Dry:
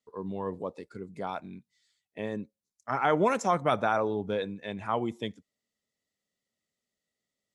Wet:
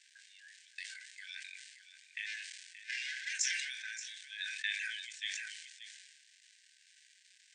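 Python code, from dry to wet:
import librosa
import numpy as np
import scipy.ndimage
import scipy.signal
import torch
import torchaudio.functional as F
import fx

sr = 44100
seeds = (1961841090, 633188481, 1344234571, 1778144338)

y = fx.lower_of_two(x, sr, delay_ms=2.4, at=(2.26, 3.33))
y = fx.dynamic_eq(y, sr, hz=5800.0, q=1.8, threshold_db=-59.0, ratio=4.0, max_db=5)
y = fx.level_steps(y, sr, step_db=22)
y = fx.dmg_crackle(y, sr, seeds[0], per_s=580.0, level_db=-60.0)
y = fx.brickwall_bandpass(y, sr, low_hz=1500.0, high_hz=9200.0)
y = fx.doubler(y, sr, ms=22.0, db=-12.0)
y = y + 10.0 ** (-12.5 / 20.0) * np.pad(y, (int(577 * sr / 1000.0), 0))[:len(y)]
y = fx.sustainer(y, sr, db_per_s=39.0)
y = F.gain(torch.from_numpy(y), 12.5).numpy()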